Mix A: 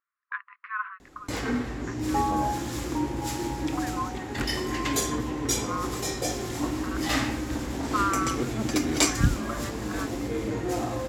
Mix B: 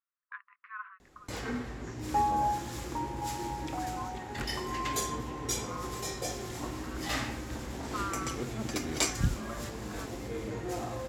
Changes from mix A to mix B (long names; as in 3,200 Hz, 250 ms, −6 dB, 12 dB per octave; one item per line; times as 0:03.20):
speech −10.5 dB
first sound −6.0 dB
master: add parametric band 290 Hz −8 dB 0.26 octaves